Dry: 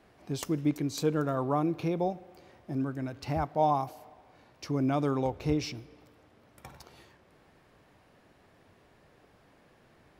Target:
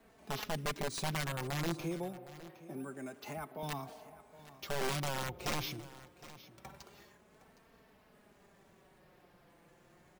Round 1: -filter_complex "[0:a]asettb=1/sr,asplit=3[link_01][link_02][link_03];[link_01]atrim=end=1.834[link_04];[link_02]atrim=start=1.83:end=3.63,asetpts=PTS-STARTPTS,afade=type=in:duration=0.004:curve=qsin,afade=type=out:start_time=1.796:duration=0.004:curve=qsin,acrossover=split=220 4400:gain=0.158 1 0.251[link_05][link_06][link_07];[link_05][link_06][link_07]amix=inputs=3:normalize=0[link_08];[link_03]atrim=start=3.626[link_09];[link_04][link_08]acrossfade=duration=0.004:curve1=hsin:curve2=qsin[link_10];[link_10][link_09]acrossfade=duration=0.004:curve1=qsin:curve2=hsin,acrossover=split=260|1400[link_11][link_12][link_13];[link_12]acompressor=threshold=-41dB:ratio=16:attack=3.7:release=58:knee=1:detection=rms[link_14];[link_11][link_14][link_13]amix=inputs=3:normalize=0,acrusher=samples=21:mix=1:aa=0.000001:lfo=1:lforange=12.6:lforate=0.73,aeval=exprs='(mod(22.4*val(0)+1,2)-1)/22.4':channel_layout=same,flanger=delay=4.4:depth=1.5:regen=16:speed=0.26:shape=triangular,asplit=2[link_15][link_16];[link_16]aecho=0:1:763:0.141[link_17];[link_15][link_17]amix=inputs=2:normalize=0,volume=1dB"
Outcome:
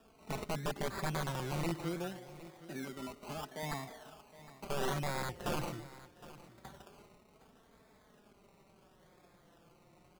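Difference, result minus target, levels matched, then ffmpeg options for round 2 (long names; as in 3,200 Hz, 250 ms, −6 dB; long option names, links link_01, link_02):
sample-and-hold swept by an LFO: distortion +9 dB
-filter_complex "[0:a]asettb=1/sr,asplit=3[link_01][link_02][link_03];[link_01]atrim=end=1.834[link_04];[link_02]atrim=start=1.83:end=3.63,asetpts=PTS-STARTPTS,afade=type=in:duration=0.004:curve=qsin,afade=type=out:start_time=1.796:duration=0.004:curve=qsin,acrossover=split=220 4400:gain=0.158 1 0.251[link_05][link_06][link_07];[link_05][link_06][link_07]amix=inputs=3:normalize=0[link_08];[link_03]atrim=start=3.626[link_09];[link_04][link_08]acrossfade=duration=0.004:curve1=hsin:curve2=qsin[link_10];[link_10][link_09]acrossfade=duration=0.004:curve1=qsin:curve2=hsin,acrossover=split=260|1400[link_11][link_12][link_13];[link_12]acompressor=threshold=-41dB:ratio=16:attack=3.7:release=58:knee=1:detection=rms[link_14];[link_11][link_14][link_13]amix=inputs=3:normalize=0,acrusher=samples=4:mix=1:aa=0.000001:lfo=1:lforange=2.4:lforate=0.73,aeval=exprs='(mod(22.4*val(0)+1,2)-1)/22.4':channel_layout=same,flanger=delay=4.4:depth=1.5:regen=16:speed=0.26:shape=triangular,asplit=2[link_15][link_16];[link_16]aecho=0:1:763:0.141[link_17];[link_15][link_17]amix=inputs=2:normalize=0,volume=1dB"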